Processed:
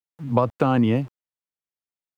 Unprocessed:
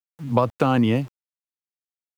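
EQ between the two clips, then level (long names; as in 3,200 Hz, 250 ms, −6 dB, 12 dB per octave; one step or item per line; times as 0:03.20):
high-shelf EQ 3,000 Hz −8.5 dB
0.0 dB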